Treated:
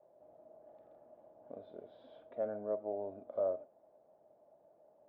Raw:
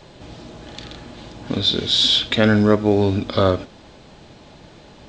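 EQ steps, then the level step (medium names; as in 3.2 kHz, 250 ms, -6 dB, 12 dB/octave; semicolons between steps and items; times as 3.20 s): four-pole ladder low-pass 670 Hz, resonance 75%; differentiator; +7.5 dB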